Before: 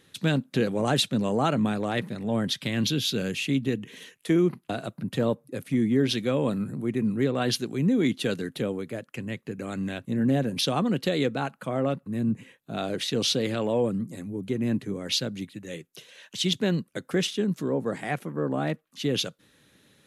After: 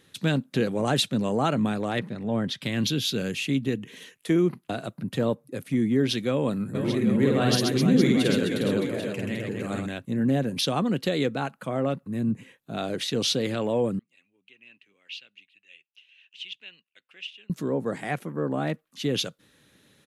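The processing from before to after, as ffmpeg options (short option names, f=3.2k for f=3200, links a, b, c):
-filter_complex "[0:a]asettb=1/sr,asplit=3[a][b][c];[a]atrim=end=1.994[d];[b]atrim=start=1.99:end=2.62,asetpts=PTS-STARTPTS,afade=t=in:d=0.004:c=qsin,afade=t=out:st=0.626:d=0.004:c=qsin,aemphasis=mode=reproduction:type=50kf[e];[c]atrim=start=2.616[f];[d][e]acrossfade=d=0.004:c1=hsin:c2=qsin[g];[g][f]acrossfade=d=0.004:c1=qsin:c2=hsin,asplit=3[h][i][j];[h]afade=t=out:st=6.74:d=0.02[k];[i]aecho=1:1:50|130|258|462.8|790.5:0.794|0.631|0.501|0.398|0.316,afade=t=in:st=6.74:d=0.02,afade=t=out:st=9.85:d=0.02[l];[j]afade=t=in:st=9.85:d=0.02[m];[k][l][m]amix=inputs=3:normalize=0,asettb=1/sr,asplit=3[n][o][p];[n]atrim=end=13.994[q];[o]atrim=start=13.99:end=17.5,asetpts=PTS-STARTPTS,afade=t=in:d=0.004:c=qsin,afade=t=out:st=3.506:d=0.004:c=qsin,bandpass=f=2.7k:t=q:w=7.9[r];[p]atrim=start=17.496[s];[q][r]acrossfade=d=0.004:c1=hsin:c2=qsin[t];[t][s]acrossfade=d=0.004:c1=qsin:c2=hsin"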